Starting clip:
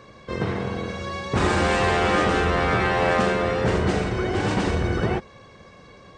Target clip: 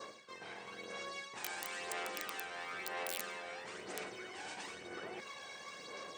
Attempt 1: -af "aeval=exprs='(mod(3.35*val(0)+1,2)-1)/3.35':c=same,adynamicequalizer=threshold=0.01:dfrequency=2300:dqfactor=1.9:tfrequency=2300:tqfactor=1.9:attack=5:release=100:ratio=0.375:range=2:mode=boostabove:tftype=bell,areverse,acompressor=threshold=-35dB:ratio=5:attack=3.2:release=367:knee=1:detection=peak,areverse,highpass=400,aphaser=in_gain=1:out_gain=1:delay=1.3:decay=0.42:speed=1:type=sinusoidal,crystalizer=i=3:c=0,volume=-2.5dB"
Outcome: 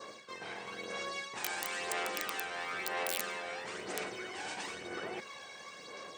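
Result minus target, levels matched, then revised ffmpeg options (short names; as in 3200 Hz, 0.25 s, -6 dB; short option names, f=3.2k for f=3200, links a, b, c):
compressor: peak gain reduction -5 dB
-af "aeval=exprs='(mod(3.35*val(0)+1,2)-1)/3.35':c=same,adynamicequalizer=threshold=0.01:dfrequency=2300:dqfactor=1.9:tfrequency=2300:tqfactor=1.9:attack=5:release=100:ratio=0.375:range=2:mode=boostabove:tftype=bell,areverse,acompressor=threshold=-41.5dB:ratio=5:attack=3.2:release=367:knee=1:detection=peak,areverse,highpass=400,aphaser=in_gain=1:out_gain=1:delay=1.3:decay=0.42:speed=1:type=sinusoidal,crystalizer=i=3:c=0,volume=-2.5dB"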